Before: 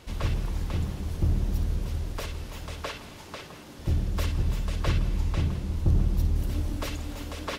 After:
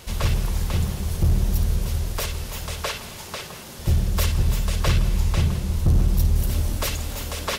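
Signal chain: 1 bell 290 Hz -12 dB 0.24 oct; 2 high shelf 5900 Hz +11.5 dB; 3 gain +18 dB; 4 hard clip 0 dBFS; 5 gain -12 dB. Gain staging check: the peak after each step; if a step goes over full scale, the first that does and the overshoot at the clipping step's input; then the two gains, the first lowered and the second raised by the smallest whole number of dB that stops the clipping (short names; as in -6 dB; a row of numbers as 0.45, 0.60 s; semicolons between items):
-12.5, -12.5, +5.5, 0.0, -12.0 dBFS; step 3, 5.5 dB; step 3 +12 dB, step 5 -6 dB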